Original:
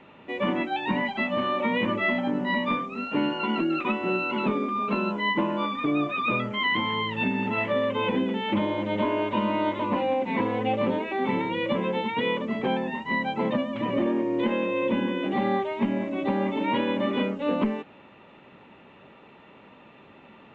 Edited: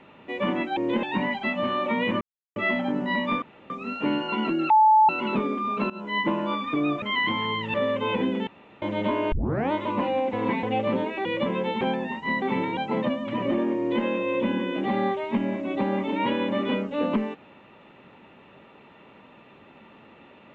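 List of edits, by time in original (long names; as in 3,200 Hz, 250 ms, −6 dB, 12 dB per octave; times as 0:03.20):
0:01.95: splice in silence 0.35 s
0:02.81: splice in room tone 0.28 s
0:03.81–0:04.20: beep over 868 Hz −13 dBFS
0:05.01–0:05.31: fade in, from −19 dB
0:06.13–0:06.50: remove
0:07.22–0:07.68: remove
0:08.41–0:08.76: fill with room tone
0:09.26: tape start 0.40 s
0:10.27–0:10.57: reverse
0:11.19–0:11.54: move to 0:13.25
0:12.10–0:12.64: remove
0:14.27–0:14.53: duplicate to 0:00.77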